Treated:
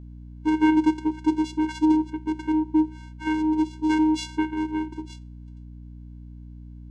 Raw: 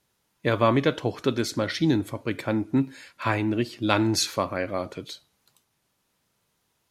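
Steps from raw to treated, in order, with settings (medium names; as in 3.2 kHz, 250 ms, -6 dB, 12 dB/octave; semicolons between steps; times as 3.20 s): vocoder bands 4, square 311 Hz; hum 60 Hz, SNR 16 dB; trim +2.5 dB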